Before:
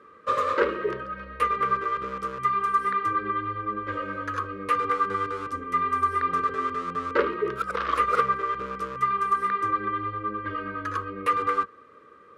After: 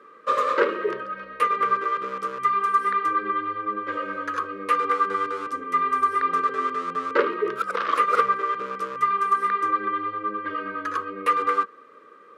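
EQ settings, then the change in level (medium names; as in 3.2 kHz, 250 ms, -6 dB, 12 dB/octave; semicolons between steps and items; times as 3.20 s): high-pass 250 Hz 12 dB/octave; +2.5 dB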